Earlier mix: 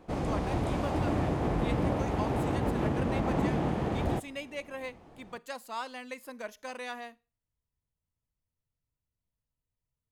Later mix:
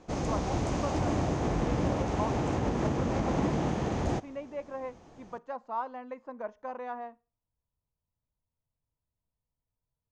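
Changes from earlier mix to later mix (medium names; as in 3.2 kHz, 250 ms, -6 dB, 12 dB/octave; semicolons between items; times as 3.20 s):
speech: add resonant low-pass 960 Hz, resonance Q 1.7; master: add resonant low-pass 6.4 kHz, resonance Q 4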